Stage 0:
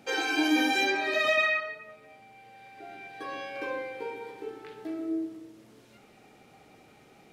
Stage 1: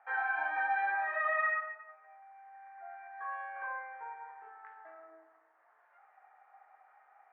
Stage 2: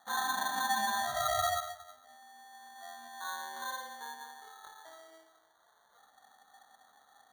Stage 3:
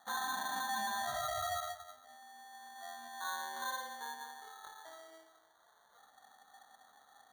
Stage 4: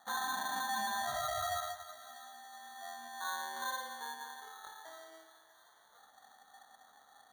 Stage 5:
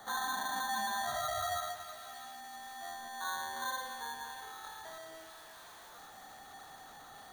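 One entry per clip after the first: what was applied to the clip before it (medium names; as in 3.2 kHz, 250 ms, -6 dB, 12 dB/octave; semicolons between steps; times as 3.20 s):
Chebyshev band-pass 730–1800 Hz, order 3
sample-and-hold 17×
peak limiter -31.5 dBFS, peak gain reduction 9.5 dB
thinning echo 642 ms, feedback 54%, high-pass 1.1 kHz, level -15 dB; trim +1 dB
jump at every zero crossing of -49.5 dBFS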